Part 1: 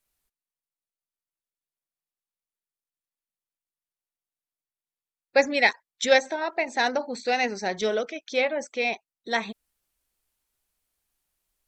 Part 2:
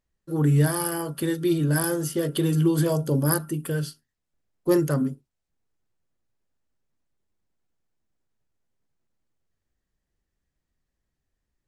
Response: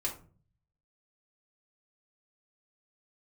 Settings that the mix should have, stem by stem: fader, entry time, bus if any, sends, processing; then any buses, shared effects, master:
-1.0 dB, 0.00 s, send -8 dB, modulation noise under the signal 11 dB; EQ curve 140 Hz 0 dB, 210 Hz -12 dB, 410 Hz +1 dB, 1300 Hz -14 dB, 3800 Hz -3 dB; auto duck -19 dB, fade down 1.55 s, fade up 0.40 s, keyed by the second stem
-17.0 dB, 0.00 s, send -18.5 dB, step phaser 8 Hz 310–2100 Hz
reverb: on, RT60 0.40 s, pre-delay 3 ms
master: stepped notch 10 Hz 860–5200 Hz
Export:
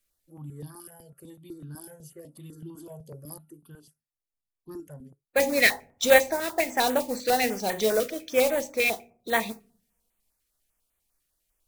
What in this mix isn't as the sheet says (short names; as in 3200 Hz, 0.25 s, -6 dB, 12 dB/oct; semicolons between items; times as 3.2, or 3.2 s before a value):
stem 1: missing EQ curve 140 Hz 0 dB, 210 Hz -12 dB, 410 Hz +1 dB, 1300 Hz -14 dB, 3800 Hz -3 dB; stem 2: send off